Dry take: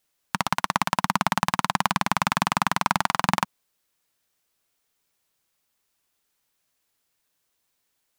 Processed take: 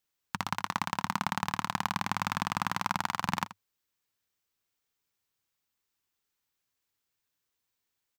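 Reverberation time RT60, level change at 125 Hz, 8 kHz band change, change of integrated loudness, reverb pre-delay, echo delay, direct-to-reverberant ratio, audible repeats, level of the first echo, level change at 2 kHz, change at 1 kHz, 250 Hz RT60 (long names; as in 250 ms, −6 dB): no reverb audible, −7.0 dB, −9.0 dB, −8.0 dB, no reverb audible, 81 ms, no reverb audible, 1, −15.0 dB, −8.0 dB, −8.5 dB, no reverb audible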